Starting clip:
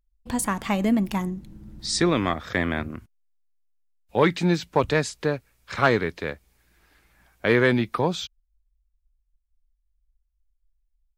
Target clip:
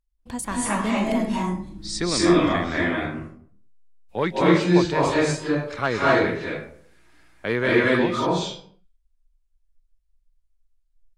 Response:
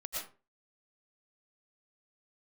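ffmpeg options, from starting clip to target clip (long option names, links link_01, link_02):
-filter_complex "[1:a]atrim=start_sample=2205,afade=type=out:start_time=0.41:duration=0.01,atrim=end_sample=18522,asetrate=22050,aresample=44100[link_01];[0:a][link_01]afir=irnorm=-1:irlink=0,volume=-3.5dB"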